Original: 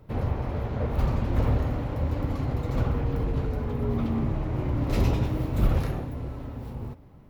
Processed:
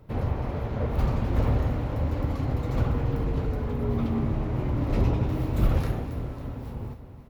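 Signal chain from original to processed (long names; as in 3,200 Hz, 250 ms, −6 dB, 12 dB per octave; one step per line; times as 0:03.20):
0:04.89–0:05.29: high-shelf EQ 3,000 Hz −12 dB
repeating echo 274 ms, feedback 57%, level −13 dB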